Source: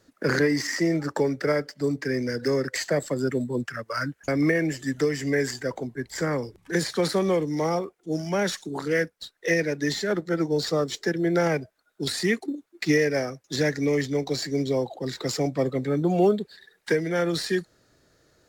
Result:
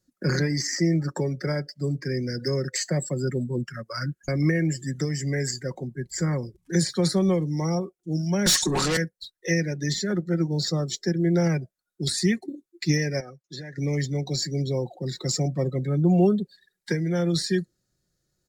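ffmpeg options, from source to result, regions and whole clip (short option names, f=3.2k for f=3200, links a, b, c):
-filter_complex "[0:a]asettb=1/sr,asplit=3[a][b][c];[a]atrim=end=8.464[d];[b]atrim=start=8.46:end=8.97,asetpts=PTS-STARTPTS,afade=t=in:d=0.004:c=qsin,afade=t=out:st=0.506:d=0.004:c=qsin,highpass=f=140:w=0.5412,highpass=f=140:w=1.3066,asplit=2[e][f];[f]highpass=f=720:p=1,volume=31dB,asoftclip=type=tanh:threshold=-13dB[g];[e][g]amix=inputs=2:normalize=0,lowpass=f=5.8k:p=1,volume=-6dB[h];[c]atrim=start=8.966[i];[d][h]acrossfade=d=0.004:c1=hsin:c2=qsin[j];[j][i]acrossfade=d=0.004:c1=qsin:c2=hsin,asettb=1/sr,asplit=3[k][l][m];[k]atrim=end=13.204[n];[l]atrim=start=13.2:end=13.78,asetpts=PTS-STARTPTS,afade=t=in:d=0.004:c=qsin,afade=t=out:st=0.576:d=0.004:c=qsin,lowpass=f=2.3k:p=1,lowshelf=f=420:g=-11.5,acompressor=threshold=-31dB:ratio=5:attack=3.2:release=140:knee=1:detection=peak[o];[m]atrim=start=13.776[p];[n][o]acrossfade=d=0.004:c1=hsin:c2=qsin[q];[q][p]acrossfade=d=0.004:c1=qsin:c2=hsin,afftdn=nr=15:nf=-40,bass=f=250:g=13,treble=f=4k:g=13,aecho=1:1:5.5:0.47,volume=-6.5dB"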